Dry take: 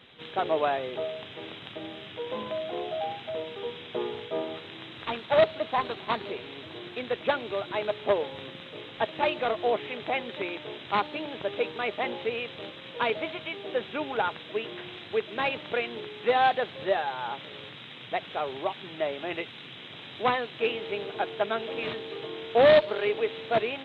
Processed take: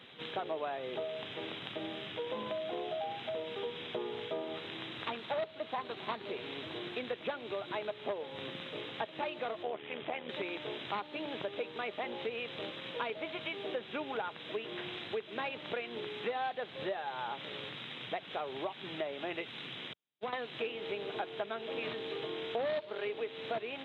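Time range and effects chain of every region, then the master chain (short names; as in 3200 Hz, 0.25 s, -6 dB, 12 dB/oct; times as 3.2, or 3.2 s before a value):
9.63–10.29 steep low-pass 3600 Hz 72 dB/oct + AM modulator 77 Hz, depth 50%
19.93–20.33 compressor 16:1, threshold -28 dBFS + gate -34 dBFS, range -52 dB
whole clip: compressor 5:1, threshold -35 dBFS; HPF 110 Hz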